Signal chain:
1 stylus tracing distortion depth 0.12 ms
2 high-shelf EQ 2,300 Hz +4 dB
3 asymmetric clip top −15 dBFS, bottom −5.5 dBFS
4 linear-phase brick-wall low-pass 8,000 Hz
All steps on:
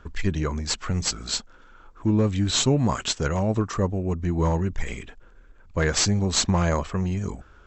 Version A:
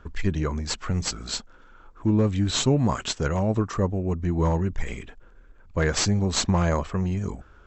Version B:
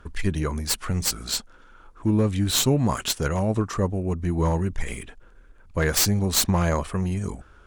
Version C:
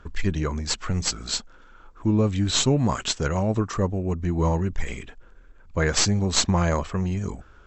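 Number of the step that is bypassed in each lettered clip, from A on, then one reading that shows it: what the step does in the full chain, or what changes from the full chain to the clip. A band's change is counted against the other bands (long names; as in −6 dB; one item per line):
2, 8 kHz band −3.0 dB
4, change in crest factor +4.0 dB
3, distortion level −13 dB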